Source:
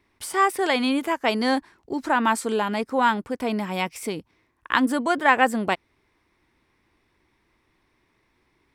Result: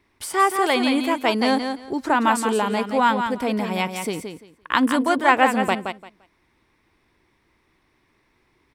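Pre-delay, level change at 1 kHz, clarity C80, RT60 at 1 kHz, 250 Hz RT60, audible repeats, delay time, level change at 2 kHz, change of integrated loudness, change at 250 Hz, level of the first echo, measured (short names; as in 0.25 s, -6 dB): none, +3.0 dB, none, none, none, 2, 0.172 s, +1.0 dB, +2.5 dB, +3.0 dB, -7.0 dB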